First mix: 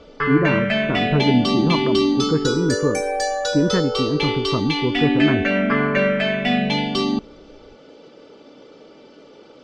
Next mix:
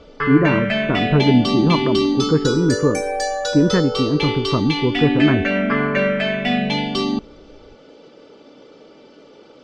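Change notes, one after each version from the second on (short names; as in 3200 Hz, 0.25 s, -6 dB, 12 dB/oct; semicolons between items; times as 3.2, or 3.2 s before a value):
speech: send on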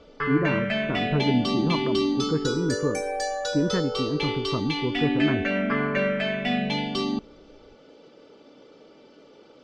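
speech -9.0 dB; background -6.0 dB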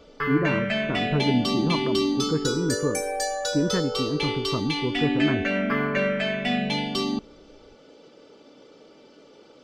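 master: remove air absorption 73 m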